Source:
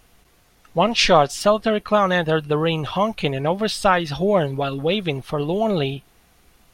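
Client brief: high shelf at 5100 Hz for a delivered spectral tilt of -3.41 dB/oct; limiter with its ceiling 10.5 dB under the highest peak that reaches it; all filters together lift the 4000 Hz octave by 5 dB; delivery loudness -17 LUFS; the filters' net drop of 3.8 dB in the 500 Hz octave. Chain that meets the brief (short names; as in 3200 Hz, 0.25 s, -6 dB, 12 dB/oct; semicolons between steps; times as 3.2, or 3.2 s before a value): bell 500 Hz -5 dB; bell 4000 Hz +8 dB; high shelf 5100 Hz -3.5 dB; gain +6 dB; limiter -5.5 dBFS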